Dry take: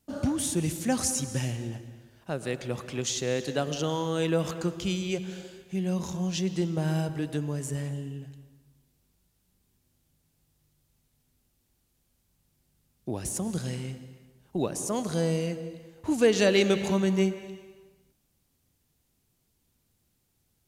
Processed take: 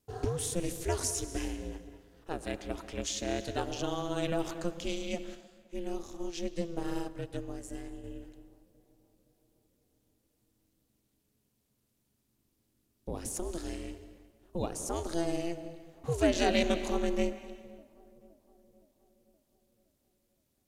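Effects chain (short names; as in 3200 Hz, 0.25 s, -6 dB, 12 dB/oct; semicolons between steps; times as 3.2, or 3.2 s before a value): tape echo 0.518 s, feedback 63%, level -22.5 dB, low-pass 1100 Hz; ring modulator 170 Hz; 5.35–8.04 upward expander 1.5:1, over -40 dBFS; gain -2 dB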